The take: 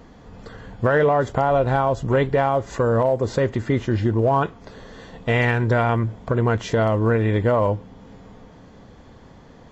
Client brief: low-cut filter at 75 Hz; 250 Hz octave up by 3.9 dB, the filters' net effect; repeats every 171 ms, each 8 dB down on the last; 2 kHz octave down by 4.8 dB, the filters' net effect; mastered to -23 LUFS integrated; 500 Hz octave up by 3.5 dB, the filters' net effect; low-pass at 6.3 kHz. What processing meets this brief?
high-pass 75 Hz; low-pass 6.3 kHz; peaking EQ 250 Hz +4 dB; peaking EQ 500 Hz +3.5 dB; peaking EQ 2 kHz -6.5 dB; feedback delay 171 ms, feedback 40%, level -8 dB; trim -5 dB

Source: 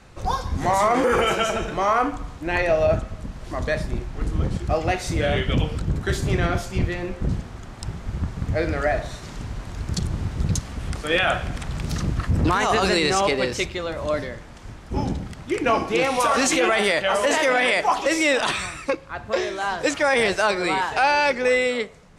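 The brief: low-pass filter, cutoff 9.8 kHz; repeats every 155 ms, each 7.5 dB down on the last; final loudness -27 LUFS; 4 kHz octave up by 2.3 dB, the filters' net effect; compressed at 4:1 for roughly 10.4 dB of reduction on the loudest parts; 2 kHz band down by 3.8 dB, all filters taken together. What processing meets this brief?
low-pass 9.8 kHz; peaking EQ 2 kHz -6 dB; peaking EQ 4 kHz +5 dB; compression 4:1, threshold -29 dBFS; feedback delay 155 ms, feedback 42%, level -7.5 dB; trim +4.5 dB

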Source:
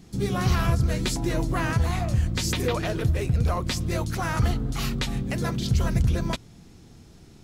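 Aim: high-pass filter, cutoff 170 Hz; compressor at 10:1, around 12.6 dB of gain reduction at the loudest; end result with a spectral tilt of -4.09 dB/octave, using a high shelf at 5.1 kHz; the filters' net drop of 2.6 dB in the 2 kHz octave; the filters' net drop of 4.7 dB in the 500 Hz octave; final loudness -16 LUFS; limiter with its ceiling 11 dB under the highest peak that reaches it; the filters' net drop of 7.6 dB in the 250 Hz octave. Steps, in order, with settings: high-pass 170 Hz; peaking EQ 250 Hz -8 dB; peaking EQ 500 Hz -3.5 dB; peaking EQ 2 kHz -3.5 dB; treble shelf 5.1 kHz +3.5 dB; compression 10:1, threshold -39 dBFS; trim +28 dB; peak limiter -6 dBFS

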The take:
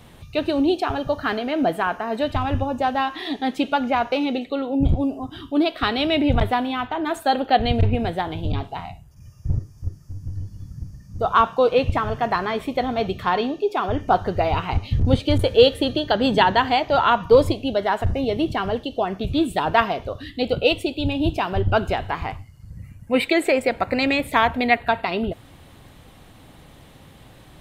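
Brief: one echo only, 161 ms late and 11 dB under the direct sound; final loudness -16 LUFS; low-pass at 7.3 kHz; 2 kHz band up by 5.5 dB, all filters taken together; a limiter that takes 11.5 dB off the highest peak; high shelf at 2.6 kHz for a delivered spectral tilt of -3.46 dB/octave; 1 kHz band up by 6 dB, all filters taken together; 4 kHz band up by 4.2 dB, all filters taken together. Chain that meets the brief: low-pass 7.3 kHz; peaking EQ 1 kHz +7 dB; peaking EQ 2 kHz +5 dB; treble shelf 2.6 kHz -4 dB; peaking EQ 4 kHz +6.5 dB; peak limiter -7.5 dBFS; delay 161 ms -11 dB; trim +4 dB

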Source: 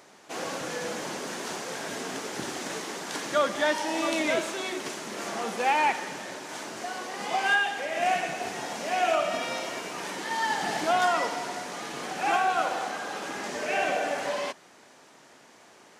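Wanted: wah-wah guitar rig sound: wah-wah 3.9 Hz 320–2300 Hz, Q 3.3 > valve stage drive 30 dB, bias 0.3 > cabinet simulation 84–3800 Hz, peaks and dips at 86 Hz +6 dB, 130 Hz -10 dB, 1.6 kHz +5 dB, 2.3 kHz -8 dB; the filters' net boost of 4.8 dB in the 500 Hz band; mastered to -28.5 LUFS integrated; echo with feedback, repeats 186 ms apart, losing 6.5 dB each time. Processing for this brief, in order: peaking EQ 500 Hz +6.5 dB; feedback delay 186 ms, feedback 47%, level -6.5 dB; wah-wah 3.9 Hz 320–2300 Hz, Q 3.3; valve stage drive 30 dB, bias 0.3; cabinet simulation 84–3800 Hz, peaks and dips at 86 Hz +6 dB, 130 Hz -10 dB, 1.6 kHz +5 dB, 2.3 kHz -8 dB; trim +9 dB

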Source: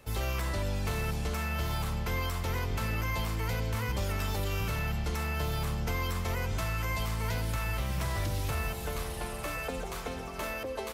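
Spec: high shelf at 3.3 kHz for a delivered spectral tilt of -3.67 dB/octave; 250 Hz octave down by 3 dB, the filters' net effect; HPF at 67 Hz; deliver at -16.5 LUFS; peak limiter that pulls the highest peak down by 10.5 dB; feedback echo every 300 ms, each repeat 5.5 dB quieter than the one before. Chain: high-pass 67 Hz; peaking EQ 250 Hz -4.5 dB; treble shelf 3.3 kHz +6 dB; peak limiter -29.5 dBFS; feedback delay 300 ms, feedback 53%, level -5.5 dB; trim +20 dB

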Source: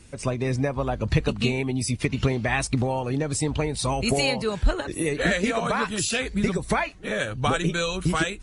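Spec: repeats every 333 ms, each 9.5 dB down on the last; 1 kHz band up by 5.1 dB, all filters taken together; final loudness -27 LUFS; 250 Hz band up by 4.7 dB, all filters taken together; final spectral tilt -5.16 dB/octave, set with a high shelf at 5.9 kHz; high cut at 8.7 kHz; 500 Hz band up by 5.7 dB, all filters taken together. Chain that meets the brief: low-pass 8.7 kHz; peaking EQ 250 Hz +4.5 dB; peaking EQ 500 Hz +4.5 dB; peaking EQ 1 kHz +5 dB; treble shelf 5.9 kHz -4.5 dB; feedback delay 333 ms, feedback 33%, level -9.5 dB; trim -5.5 dB

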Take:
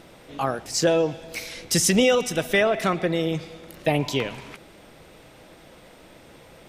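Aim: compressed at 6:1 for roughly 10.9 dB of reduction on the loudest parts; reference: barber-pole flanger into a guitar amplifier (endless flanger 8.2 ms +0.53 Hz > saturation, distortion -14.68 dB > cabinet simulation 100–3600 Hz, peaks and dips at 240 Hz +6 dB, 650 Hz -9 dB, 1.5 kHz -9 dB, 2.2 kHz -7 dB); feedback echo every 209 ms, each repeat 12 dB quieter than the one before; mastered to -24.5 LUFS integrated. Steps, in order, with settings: compression 6:1, threshold -27 dBFS; feedback delay 209 ms, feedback 25%, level -12 dB; endless flanger 8.2 ms +0.53 Hz; saturation -28 dBFS; cabinet simulation 100–3600 Hz, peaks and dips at 240 Hz +6 dB, 650 Hz -9 dB, 1.5 kHz -9 dB, 2.2 kHz -7 dB; trim +14.5 dB

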